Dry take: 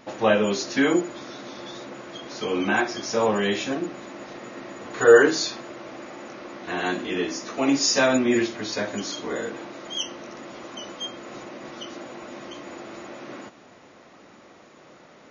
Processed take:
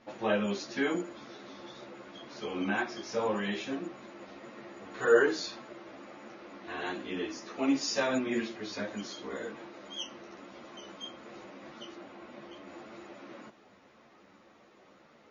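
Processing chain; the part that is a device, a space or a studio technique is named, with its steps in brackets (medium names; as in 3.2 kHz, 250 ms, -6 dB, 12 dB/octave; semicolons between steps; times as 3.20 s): string-machine ensemble chorus (three-phase chorus; low-pass 5.5 kHz 12 dB/octave); 11.95–12.68 s: distance through air 71 m; trim -6 dB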